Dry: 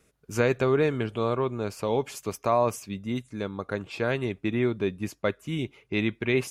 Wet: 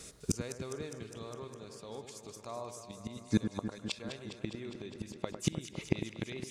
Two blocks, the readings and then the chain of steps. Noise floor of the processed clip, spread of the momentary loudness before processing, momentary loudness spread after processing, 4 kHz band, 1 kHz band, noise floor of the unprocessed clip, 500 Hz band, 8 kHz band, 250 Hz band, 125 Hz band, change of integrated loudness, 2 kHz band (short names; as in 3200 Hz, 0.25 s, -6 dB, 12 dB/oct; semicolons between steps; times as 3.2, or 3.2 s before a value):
-54 dBFS, 10 LU, 12 LU, -5.0 dB, -17.0 dB, -66 dBFS, -16.5 dB, -1.0 dB, -8.5 dB, -9.0 dB, -11.5 dB, -15.0 dB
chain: band shelf 5800 Hz +11 dB; notch 1500 Hz, Q 19; flipped gate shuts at -25 dBFS, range -31 dB; echo with dull and thin repeats by turns 0.102 s, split 1900 Hz, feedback 86%, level -8.5 dB; gain +11 dB